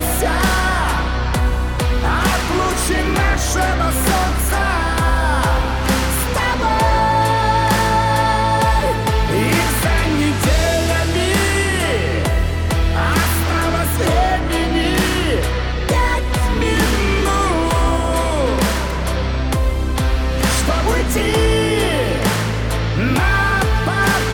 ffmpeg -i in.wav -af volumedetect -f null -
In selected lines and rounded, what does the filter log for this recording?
mean_volume: -16.1 dB
max_volume: -5.6 dB